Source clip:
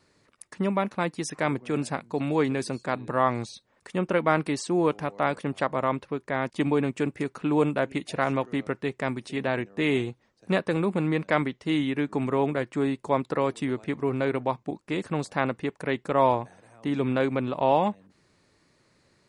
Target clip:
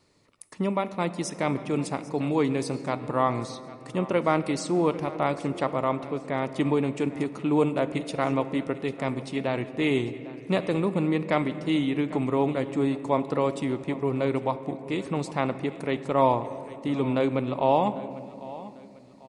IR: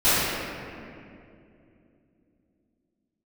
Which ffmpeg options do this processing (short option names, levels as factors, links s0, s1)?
-filter_complex "[0:a]equalizer=f=1600:w=3.7:g=-9,aecho=1:1:797|1594|2391:0.126|0.0478|0.0182,asplit=2[s0][s1];[1:a]atrim=start_sample=2205[s2];[s1][s2]afir=irnorm=-1:irlink=0,volume=0.0224[s3];[s0][s3]amix=inputs=2:normalize=0"